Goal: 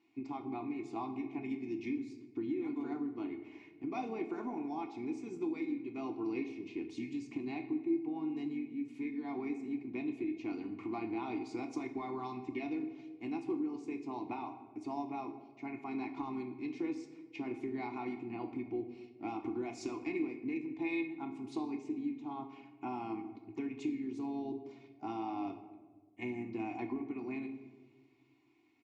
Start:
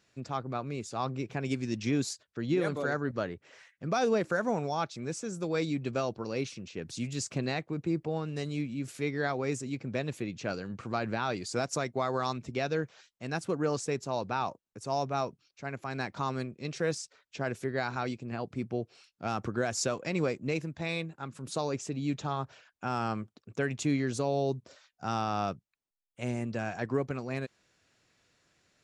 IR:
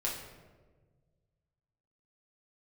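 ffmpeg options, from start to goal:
-filter_complex "[0:a]asplit=3[a][b][c];[a]bandpass=f=300:t=q:w=8,volume=0dB[d];[b]bandpass=f=870:t=q:w=8,volume=-6dB[e];[c]bandpass=f=2.24k:t=q:w=8,volume=-9dB[f];[d][e][f]amix=inputs=3:normalize=0,acompressor=threshold=-48dB:ratio=6,aecho=1:1:2.8:0.65,asplit=2[g][h];[h]asetrate=37084,aresample=44100,atempo=1.18921,volume=-15dB[i];[g][i]amix=inputs=2:normalize=0,asplit=2[j][k];[1:a]atrim=start_sample=2205,asetrate=43218,aresample=44100[l];[k][l]afir=irnorm=-1:irlink=0,volume=-4dB[m];[j][m]amix=inputs=2:normalize=0,volume=6dB"

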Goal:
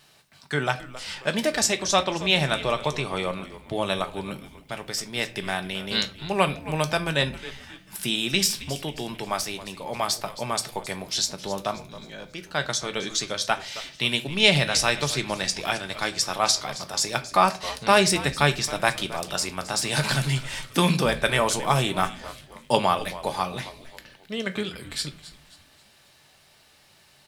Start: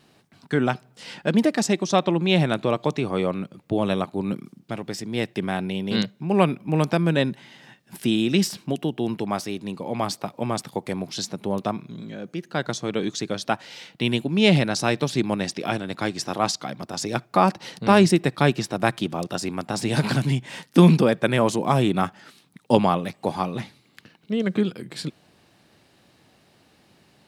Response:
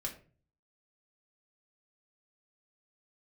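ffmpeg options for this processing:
-filter_complex "[0:a]equalizer=f=250:t=o:w=1.8:g=-14,asplit=5[a][b][c][d][e];[b]adelay=268,afreqshift=-120,volume=-16dB[f];[c]adelay=536,afreqshift=-240,volume=-23.5dB[g];[d]adelay=804,afreqshift=-360,volume=-31.1dB[h];[e]adelay=1072,afreqshift=-480,volume=-38.6dB[i];[a][f][g][h][i]amix=inputs=5:normalize=0,asplit=2[j][k];[1:a]atrim=start_sample=2205,highshelf=f=3k:g=11[l];[k][l]afir=irnorm=-1:irlink=0,volume=-4dB[m];[j][m]amix=inputs=2:normalize=0,volume=-1dB"

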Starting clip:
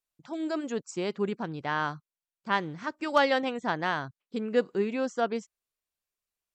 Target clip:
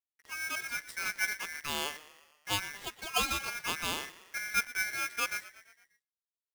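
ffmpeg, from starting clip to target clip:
-filter_complex "[0:a]asettb=1/sr,asplit=3[a][b][c];[a]atrim=end=2.774[d];[b]atrim=start=2.77:end=3.48,asetpts=PTS-STARTPTS,afade=t=in:d=0.004:c=qsin,afade=t=out:st=0.706:d=0.004:c=qsin,lowshelf=f=360:g=-10.5[e];[c]atrim=start=3.476[f];[d][e]acrossfade=d=0.004:c1=hsin:c2=qsin[g];[g][f]acrossfade=d=0.004:c1=qsin:c2=hsin,acrusher=bits=8:dc=4:mix=0:aa=0.000001,asettb=1/sr,asplit=3[h][i][j];[h]atrim=end=0.594[k];[i]atrim=start=0.59:end=1.36,asetpts=PTS-STARTPTS,afade=t=in:d=0.004:c=qsin,afade=t=out:st=0.766:d=0.004:c=qsin,asplit=2[l][m];[m]adelay=15,volume=-7dB[n];[l][n]amix=inputs=2:normalize=0,atrim=end_sample=33957[o];[j]atrim=start=1.356[p];[k][o]acrossfade=d=0.004:c1=hsin:c2=qsin[q];[q][p]acrossfade=d=0.004:c1=qsin:c2=hsin,asettb=1/sr,asplit=3[r][s][t];[r]atrim=end=4.404[u];[s]atrim=start=4.4:end=5.1,asetpts=PTS-STARTPTS,afade=t=in:d=0.004:c=qsin,afade=t=out:st=0.696:d=0.004:c=qsin,highpass=110,lowpass=2.5k[v];[t]atrim=start=5.096[w];[u][v]acrossfade=d=0.004:c1=hsin:c2=qsin[x];[x][w]acrossfade=d=0.004:c1=qsin:c2=hsin,asplit=6[y][z][aa][ab][ac][ad];[z]adelay=117,afreqshift=-44,volume=-17.5dB[ae];[aa]adelay=234,afreqshift=-88,volume=-22.4dB[af];[ab]adelay=351,afreqshift=-132,volume=-27.3dB[ag];[ac]adelay=468,afreqshift=-176,volume=-32.1dB[ah];[ad]adelay=585,afreqshift=-220,volume=-37dB[ai];[y][ae][af][ag][ah][ai]amix=inputs=6:normalize=0,aeval=exprs='val(0)*sgn(sin(2*PI*1900*n/s))':c=same,volume=-5.5dB"

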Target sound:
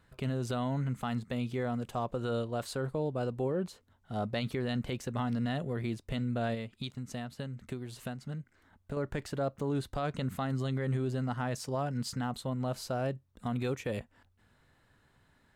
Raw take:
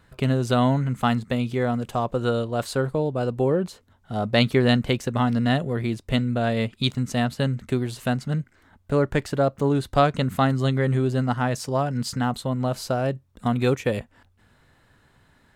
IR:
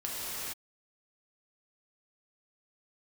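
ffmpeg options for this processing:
-filter_complex "[0:a]asettb=1/sr,asplit=3[a][b][c];[a]atrim=end=6.544[d];[b]atrim=start=6.54:end=8.97,asetpts=PTS-STARTPTS,afade=t=in:d=0.004:c=qsin,afade=t=out:st=2.426:d=0.004:c=qsin,acompressor=threshold=-28dB:ratio=5[e];[c]atrim=start=8.966[f];[d][e]acrossfade=d=0.004:c1=hsin:c2=qsin[g];[g][f]acrossfade=d=0.004:c1=qsin:c2=hsin,alimiter=limit=-16dB:level=0:latency=1:release=38,volume=-8dB"

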